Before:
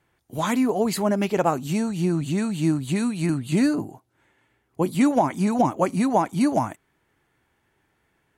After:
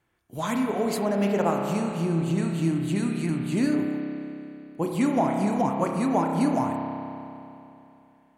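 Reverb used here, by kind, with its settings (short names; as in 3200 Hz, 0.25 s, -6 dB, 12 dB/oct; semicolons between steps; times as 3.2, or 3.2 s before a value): spring tank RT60 2.9 s, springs 30 ms, chirp 70 ms, DRR 1.5 dB; gain -5 dB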